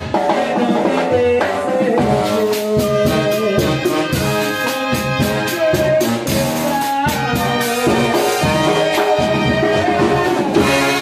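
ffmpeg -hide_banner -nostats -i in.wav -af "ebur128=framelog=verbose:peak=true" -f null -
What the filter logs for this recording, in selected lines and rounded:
Integrated loudness:
  I:         -15.6 LUFS
  Threshold: -25.6 LUFS
Loudness range:
  LRA:         1.7 LU
  Threshold: -35.8 LUFS
  LRA low:   -16.5 LUFS
  LRA high:  -14.8 LUFS
True peak:
  Peak:       -3.2 dBFS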